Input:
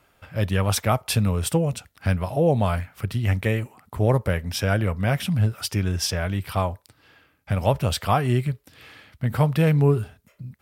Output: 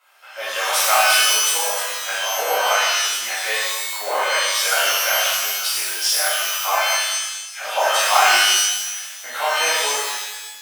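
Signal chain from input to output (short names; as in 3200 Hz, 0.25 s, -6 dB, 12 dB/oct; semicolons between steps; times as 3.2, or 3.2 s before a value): 6.54–7.97 dispersion lows, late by 0.101 s, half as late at 2100 Hz; wow and flutter 26 cents; HPF 690 Hz 24 dB/oct; shimmer reverb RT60 1.1 s, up +12 st, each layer -2 dB, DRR -11.5 dB; gain -3 dB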